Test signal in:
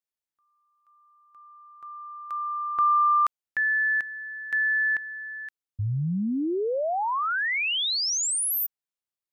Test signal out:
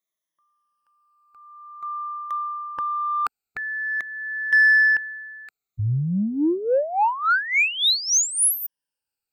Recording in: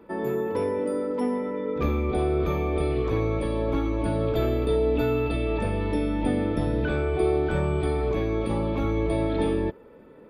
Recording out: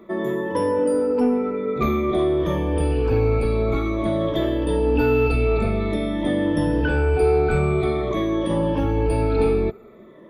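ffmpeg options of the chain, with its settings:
-filter_complex "[0:a]afftfilt=real='re*pow(10,16/40*sin(2*PI*(1.2*log(max(b,1)*sr/1024/100)/log(2)-(-0.5)*(pts-256)/sr)))':imag='im*pow(10,16/40*sin(2*PI*(1.2*log(max(b,1)*sr/1024/100)/log(2)-(-0.5)*(pts-256)/sr)))':win_size=1024:overlap=0.75,asplit=2[a][b];[b]asoftclip=type=tanh:threshold=-17.5dB,volume=-4.5dB[c];[a][c]amix=inputs=2:normalize=0,volume=-1.5dB"

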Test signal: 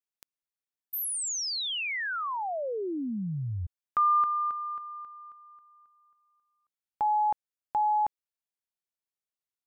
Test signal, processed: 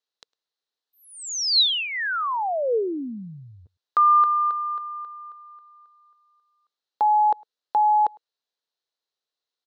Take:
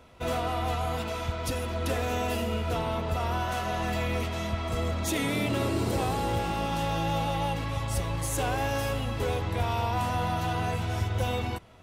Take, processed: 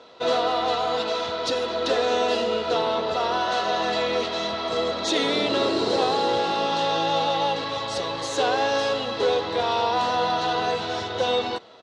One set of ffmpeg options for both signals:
-filter_complex "[0:a]highpass=340,equalizer=f=460:t=q:w=4:g=6,equalizer=f=2.3k:t=q:w=4:g=-7,equalizer=f=4k:t=q:w=4:g=10,lowpass=f=6k:w=0.5412,lowpass=f=6k:w=1.3066,asplit=2[a][b];[b]adelay=105,volume=-28dB,highshelf=f=4k:g=-2.36[c];[a][c]amix=inputs=2:normalize=0,volume=7dB"

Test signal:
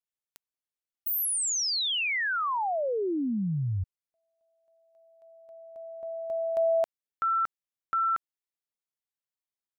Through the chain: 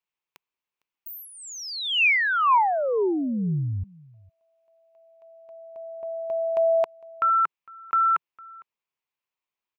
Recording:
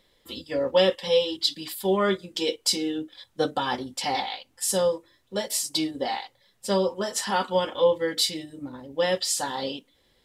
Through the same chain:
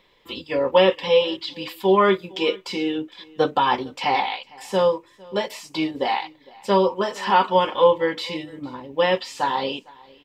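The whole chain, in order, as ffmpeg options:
-filter_complex "[0:a]acrossover=split=2700[a][b];[b]acompressor=threshold=-35dB:ratio=4:attack=1:release=60[c];[a][c]amix=inputs=2:normalize=0,equalizer=f=160:t=o:w=0.67:g=4,equalizer=f=400:t=o:w=0.67:g=6,equalizer=f=1k:t=o:w=0.67:g=11,equalizer=f=2.5k:t=o:w=0.67:g=11,equalizer=f=10k:t=o:w=0.67:g=-11,aecho=1:1:456:0.0631"

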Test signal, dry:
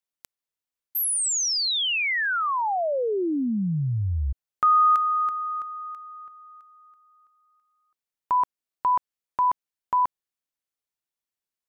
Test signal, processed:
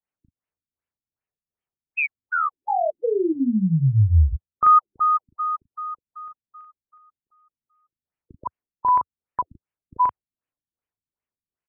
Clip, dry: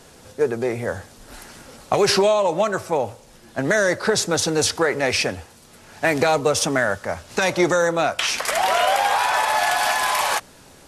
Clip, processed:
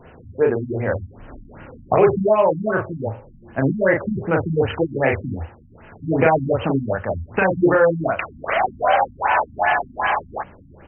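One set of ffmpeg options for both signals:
-filter_complex "[0:a]equalizer=f=86:w=1.1:g=6.5,asplit=2[a][b];[b]adelay=37,volume=-2.5dB[c];[a][c]amix=inputs=2:normalize=0,afftfilt=real='re*lt(b*sr/1024,270*pow(3200/270,0.5+0.5*sin(2*PI*2.6*pts/sr)))':imag='im*lt(b*sr/1024,270*pow(3200/270,0.5+0.5*sin(2*PI*2.6*pts/sr)))':win_size=1024:overlap=0.75,volume=1.5dB"

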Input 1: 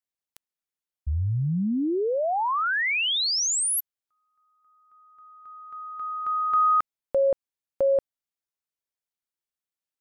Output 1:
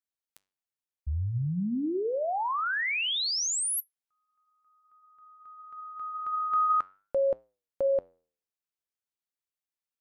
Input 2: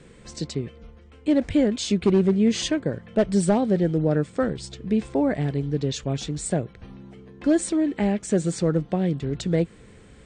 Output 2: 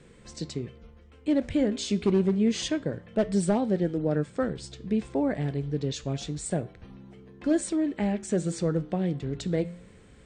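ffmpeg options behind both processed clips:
-af "flanger=delay=8.4:depth=8:regen=-84:speed=0.27:shape=triangular"

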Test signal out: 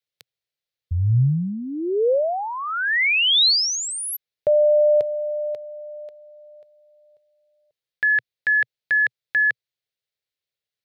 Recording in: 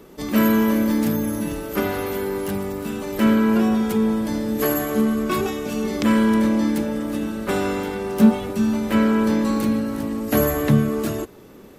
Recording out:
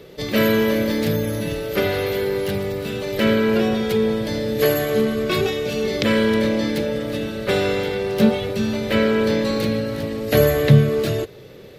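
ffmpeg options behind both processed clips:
-af "equalizer=f=125:t=o:w=1:g=12,equalizer=f=250:t=o:w=1:g=-8,equalizer=f=500:t=o:w=1:g=11,equalizer=f=1k:t=o:w=1:g=-6,equalizer=f=2k:t=o:w=1:g=6,equalizer=f=4k:t=o:w=1:g=11,equalizer=f=8k:t=o:w=1:g=-4,volume=-1.5dB"

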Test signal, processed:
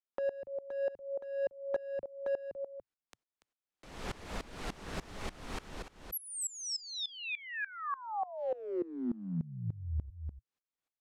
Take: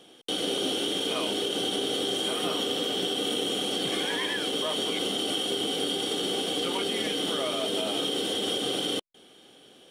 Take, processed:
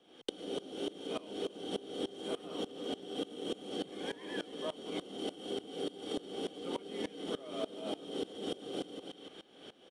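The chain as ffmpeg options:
-filter_complex "[0:a]aecho=1:1:287:0.237,acrossover=split=150|750|5800[a][b][c][d];[c]alimiter=level_in=5.5dB:limit=-24dB:level=0:latency=1:release=265,volume=-5.5dB[e];[a][b][e][d]amix=inputs=4:normalize=0,lowpass=8.5k,equalizer=f=120:t=o:w=0.31:g=-9,asoftclip=type=hard:threshold=-20dB,highshelf=f=3.6k:g=-9,acompressor=threshold=-42dB:ratio=3,aeval=exprs='val(0)*pow(10,-21*if(lt(mod(-3.4*n/s,1),2*abs(-3.4)/1000),1-mod(-3.4*n/s,1)/(2*abs(-3.4)/1000),(mod(-3.4*n/s,1)-2*abs(-3.4)/1000)/(1-2*abs(-3.4)/1000))/20)':c=same,volume=8dB"

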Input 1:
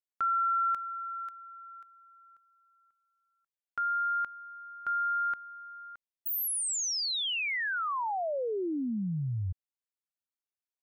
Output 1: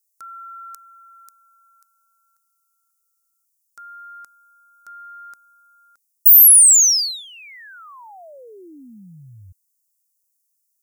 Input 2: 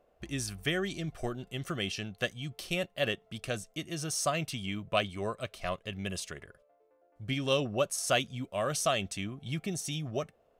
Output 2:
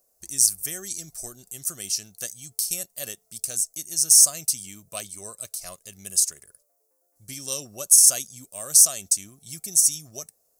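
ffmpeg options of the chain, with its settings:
-af "aexciter=amount=7.2:drive=9.2:freq=4.8k,bass=f=250:g=-1,treble=f=4k:g=9,volume=-9.5dB"

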